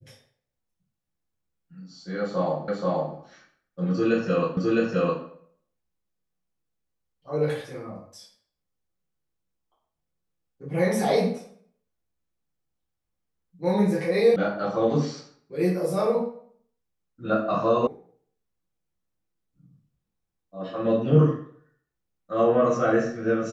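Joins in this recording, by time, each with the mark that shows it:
2.68 repeat of the last 0.48 s
4.57 repeat of the last 0.66 s
14.36 sound cut off
17.87 sound cut off

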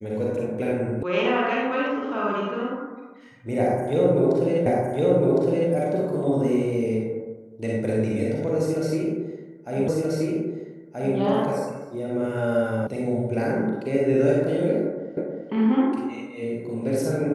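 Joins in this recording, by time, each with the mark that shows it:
1.03 sound cut off
4.66 repeat of the last 1.06 s
9.88 repeat of the last 1.28 s
12.87 sound cut off
15.17 repeat of the last 0.32 s

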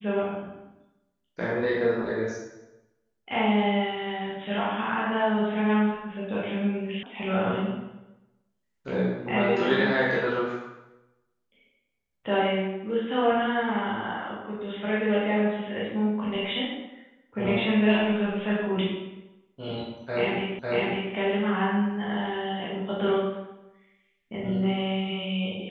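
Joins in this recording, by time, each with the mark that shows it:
7.03 sound cut off
20.59 repeat of the last 0.55 s

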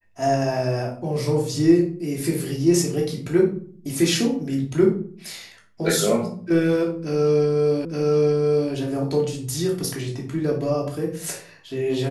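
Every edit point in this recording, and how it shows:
7.85 repeat of the last 0.87 s

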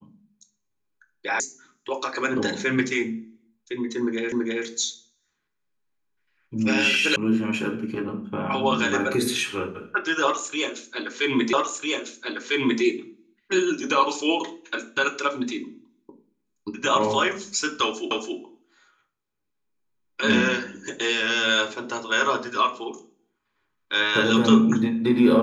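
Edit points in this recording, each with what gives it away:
1.4 sound cut off
4.32 repeat of the last 0.33 s
7.16 sound cut off
11.53 repeat of the last 1.3 s
18.11 repeat of the last 0.27 s

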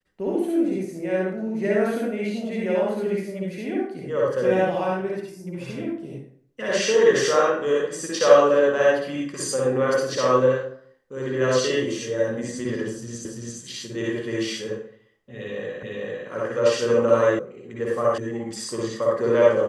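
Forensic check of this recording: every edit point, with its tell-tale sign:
13.25 repeat of the last 0.34 s
15.83 repeat of the last 0.45 s
17.39 sound cut off
18.18 sound cut off

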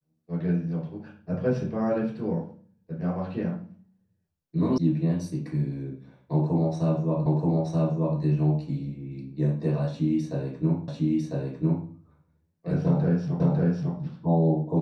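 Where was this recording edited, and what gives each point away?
4.78 sound cut off
7.26 repeat of the last 0.93 s
10.88 repeat of the last 1 s
13.4 repeat of the last 0.55 s

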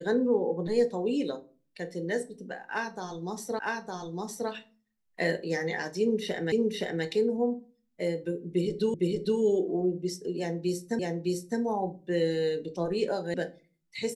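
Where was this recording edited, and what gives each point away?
3.59 repeat of the last 0.91 s
6.52 repeat of the last 0.52 s
8.94 repeat of the last 0.46 s
10.99 repeat of the last 0.61 s
13.34 sound cut off

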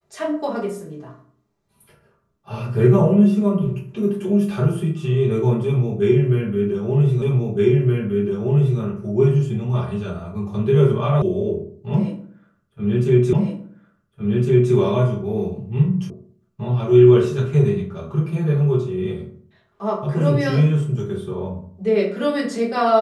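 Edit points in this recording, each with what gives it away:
7.22 repeat of the last 1.57 s
11.22 sound cut off
13.33 repeat of the last 1.41 s
16.1 sound cut off

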